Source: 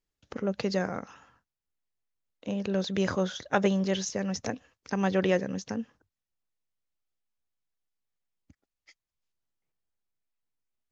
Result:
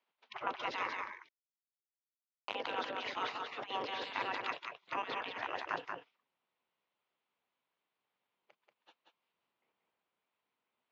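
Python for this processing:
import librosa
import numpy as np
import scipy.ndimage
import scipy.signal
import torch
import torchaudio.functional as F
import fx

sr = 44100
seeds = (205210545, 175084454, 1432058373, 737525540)

p1 = fx.spec_gate(x, sr, threshold_db=-20, keep='weak')
p2 = fx.over_compress(p1, sr, threshold_db=-45.0, ratio=-0.5)
p3 = fx.quant_dither(p2, sr, seeds[0], bits=6, dither='none', at=(1.1, 2.55))
p4 = fx.cabinet(p3, sr, low_hz=270.0, low_slope=12, high_hz=3300.0, hz=(310.0, 980.0, 1700.0), db=(-3, 5, -4))
p5 = p4 + fx.echo_single(p4, sr, ms=185, db=-4.5, dry=0)
y = p5 * librosa.db_to_amplitude(8.0)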